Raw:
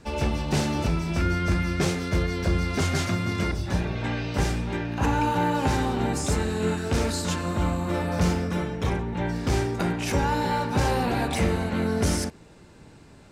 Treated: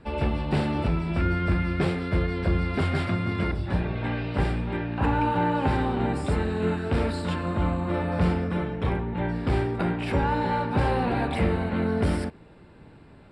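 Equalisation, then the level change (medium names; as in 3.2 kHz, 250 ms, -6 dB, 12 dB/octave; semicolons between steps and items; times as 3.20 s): boxcar filter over 7 samples; 0.0 dB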